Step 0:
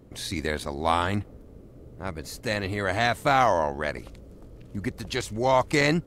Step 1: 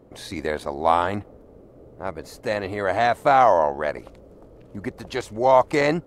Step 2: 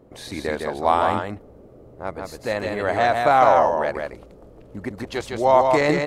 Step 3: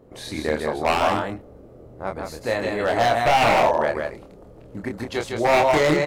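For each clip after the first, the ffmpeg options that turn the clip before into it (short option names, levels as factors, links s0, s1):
-af "equalizer=f=680:w=0.51:g=12,volume=0.531"
-af "aecho=1:1:158:0.631"
-filter_complex "[0:a]aeval=exprs='0.237*(abs(mod(val(0)/0.237+3,4)-2)-1)':c=same,asplit=2[s0][s1];[s1]adelay=26,volume=0.596[s2];[s0][s2]amix=inputs=2:normalize=0"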